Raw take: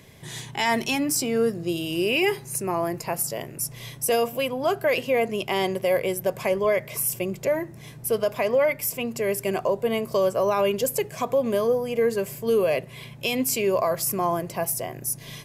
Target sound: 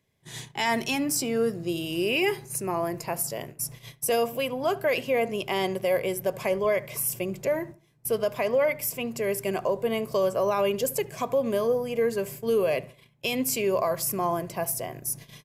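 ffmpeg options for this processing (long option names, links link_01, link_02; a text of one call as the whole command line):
ffmpeg -i in.wav -filter_complex "[0:a]agate=range=-21dB:threshold=-37dB:ratio=16:detection=peak,asplit=2[link_01][link_02];[link_02]adelay=73,lowpass=frequency=1800:poles=1,volume=-19dB,asplit=2[link_03][link_04];[link_04]adelay=73,lowpass=frequency=1800:poles=1,volume=0.36,asplit=2[link_05][link_06];[link_06]adelay=73,lowpass=frequency=1800:poles=1,volume=0.36[link_07];[link_03][link_05][link_07]amix=inputs=3:normalize=0[link_08];[link_01][link_08]amix=inputs=2:normalize=0,volume=-2.5dB" out.wav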